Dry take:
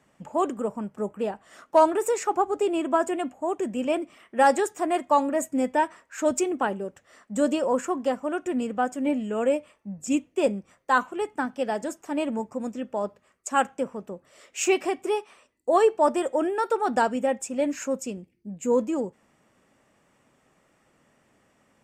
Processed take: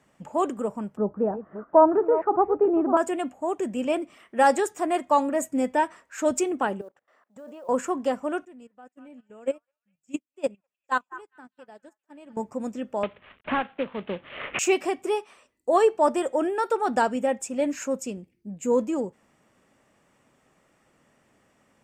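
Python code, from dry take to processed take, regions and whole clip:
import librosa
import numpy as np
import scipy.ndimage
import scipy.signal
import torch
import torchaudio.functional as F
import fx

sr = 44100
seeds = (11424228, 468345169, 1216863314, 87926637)

y = fx.chain(x, sr, fx.reverse_delay(ms=337, wet_db=-12),
    fx.lowpass(hz=1400.0, slope=24),
    fx.low_shelf(hz=490.0, db=6.0), at=(0.97, 2.97))
y = fx.chain(y, sr, fx.bandpass_q(hz=850.0, q=0.94),
    fx.level_steps(step_db=21),
    fx.quant_float(bits=4), at=(6.81, 7.69))
y = fx.chain(y, sr, fx.level_steps(step_db=10),
    fx.echo_stepped(ms=201, hz=1300.0, octaves=0.7, feedback_pct=70, wet_db=-5.0),
    fx.upward_expand(threshold_db=-46.0, expansion=2.5), at=(8.45, 12.37))
y = fx.chain(y, sr, fx.cvsd(bps=16000),
    fx.high_shelf(hz=2300.0, db=10.5),
    fx.band_squash(depth_pct=100), at=(13.03, 14.59))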